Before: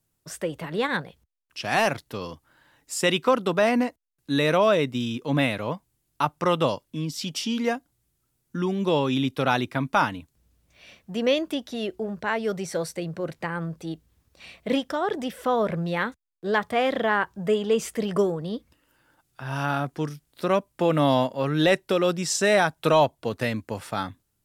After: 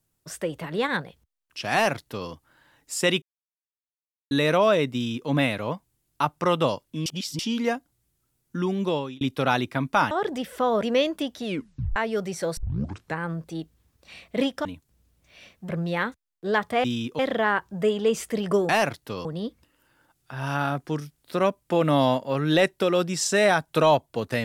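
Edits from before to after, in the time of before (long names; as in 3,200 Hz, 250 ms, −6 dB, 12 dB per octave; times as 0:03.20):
0:01.73–0:02.29: duplicate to 0:18.34
0:03.22–0:04.31: silence
0:04.94–0:05.29: duplicate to 0:16.84
0:07.06–0:07.39: reverse
0:08.80–0:09.21: fade out
0:10.11–0:11.15: swap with 0:14.97–0:15.69
0:11.77: tape stop 0.51 s
0:12.89: tape start 0.61 s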